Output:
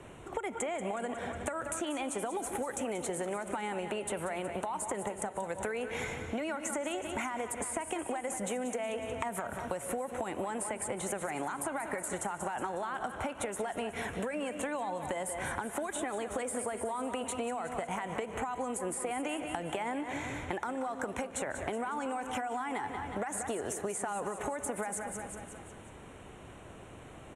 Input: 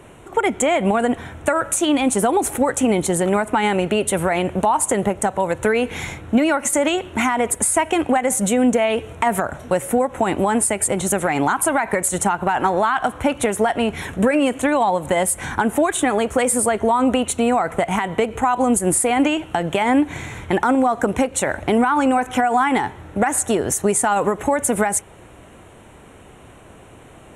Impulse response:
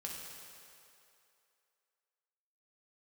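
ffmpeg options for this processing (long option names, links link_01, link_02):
-filter_complex "[0:a]lowpass=10000,aecho=1:1:182|364|546|728|910:0.211|0.112|0.0594|0.0315|0.0167,acrossover=split=390|2900|6200[link_01][link_02][link_03][link_04];[link_01]acompressor=threshold=-34dB:ratio=4[link_05];[link_02]acompressor=threshold=-23dB:ratio=4[link_06];[link_03]acompressor=threshold=-49dB:ratio=4[link_07];[link_04]acompressor=threshold=-30dB:ratio=4[link_08];[link_05][link_06][link_07][link_08]amix=inputs=4:normalize=0,asplit=2[link_09][link_10];[1:a]atrim=start_sample=2205,asetrate=52920,aresample=44100,adelay=147[link_11];[link_10][link_11]afir=irnorm=-1:irlink=0,volume=-14dB[link_12];[link_09][link_12]amix=inputs=2:normalize=0,acompressor=threshold=-26dB:ratio=6,volume=-6dB"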